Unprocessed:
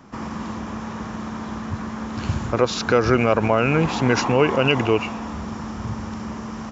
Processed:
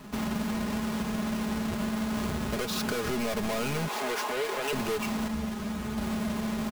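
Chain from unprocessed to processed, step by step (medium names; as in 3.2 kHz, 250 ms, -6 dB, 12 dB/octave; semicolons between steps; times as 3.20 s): square wave that keeps the level; 3.88–4.73 s: high-pass 410 Hz 24 dB/octave; saturation -17.5 dBFS, distortion -7 dB; comb 4.8 ms, depth 66%; compression, threshold -23 dBFS, peak gain reduction 7.5 dB; 5.28–5.98 s: three-phase chorus; trim -5 dB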